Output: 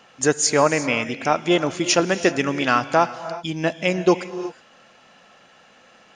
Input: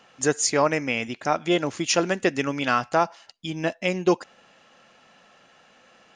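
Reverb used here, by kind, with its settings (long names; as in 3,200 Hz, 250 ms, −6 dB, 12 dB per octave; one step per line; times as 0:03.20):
reverb whose tail is shaped and stops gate 390 ms rising, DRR 12 dB
level +3.5 dB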